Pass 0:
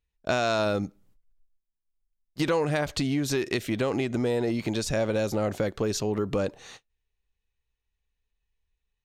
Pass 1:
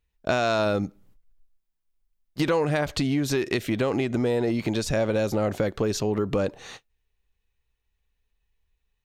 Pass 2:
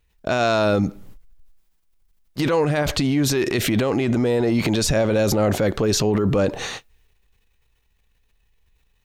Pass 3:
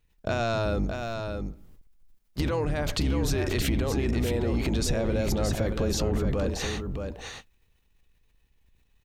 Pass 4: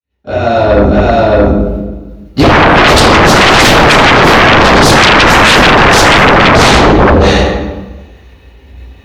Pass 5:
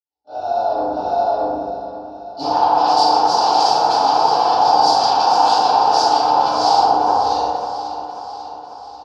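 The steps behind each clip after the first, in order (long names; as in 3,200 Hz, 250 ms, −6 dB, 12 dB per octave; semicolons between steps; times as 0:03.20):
in parallel at −1 dB: downward compressor, threshold −33 dBFS, peak gain reduction 12 dB; on the sum: parametric band 7,600 Hz −3.5 dB 1.8 octaves
transient designer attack −1 dB, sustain +7 dB; brickwall limiter −20.5 dBFS, peak gain reduction 9 dB; level +9 dB
sub-octave generator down 2 octaves, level +3 dB; downward compressor, threshold −19 dBFS, peak gain reduction 7 dB; single-tap delay 622 ms −6 dB; level −4.5 dB
fade in at the beginning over 2.99 s; convolution reverb RT60 1.2 s, pre-delay 3 ms, DRR −14 dB; sine wavefolder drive 20 dB, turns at 12 dBFS; level −13.5 dB
pair of resonant band-passes 2,000 Hz, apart 2.6 octaves; on a send: repeating echo 542 ms, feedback 58%, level −12.5 dB; on the sum: feedback delay network reverb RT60 1.4 s, low-frequency decay 0.95×, high-frequency decay 0.4×, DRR −10 dB; level −10.5 dB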